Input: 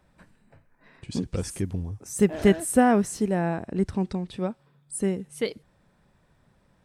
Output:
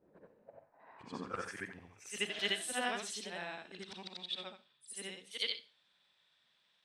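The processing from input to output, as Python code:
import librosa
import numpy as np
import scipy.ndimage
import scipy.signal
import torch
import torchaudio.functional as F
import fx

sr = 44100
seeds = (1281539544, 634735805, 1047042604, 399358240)

y = fx.frame_reverse(x, sr, frame_ms=186.0)
y = fx.rev_schroeder(y, sr, rt60_s=0.35, comb_ms=30, drr_db=14.5)
y = fx.filter_sweep_bandpass(y, sr, from_hz=390.0, to_hz=3500.0, start_s=0.08, end_s=2.41, q=4.0)
y = y * 10.0 ** (12.5 / 20.0)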